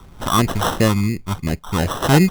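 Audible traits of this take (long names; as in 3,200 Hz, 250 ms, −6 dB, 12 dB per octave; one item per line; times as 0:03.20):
phaser sweep stages 4, 2.8 Hz, lowest notch 480–1,000 Hz
aliases and images of a low sample rate 2,300 Hz, jitter 0%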